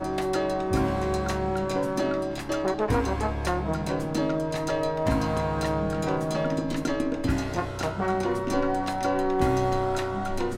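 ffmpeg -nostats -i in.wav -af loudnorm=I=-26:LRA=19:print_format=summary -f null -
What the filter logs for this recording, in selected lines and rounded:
Input Integrated:    -27.0 LUFS
Input True Peak:     -10.4 dBTP
Input LRA:             0.9 LU
Input Threshold:     -37.0 LUFS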